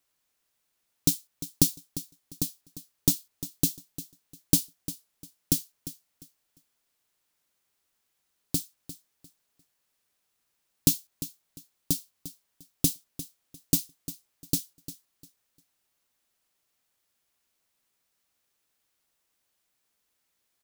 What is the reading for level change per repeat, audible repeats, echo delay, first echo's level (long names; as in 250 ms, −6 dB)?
−12.5 dB, 2, 350 ms, −14.5 dB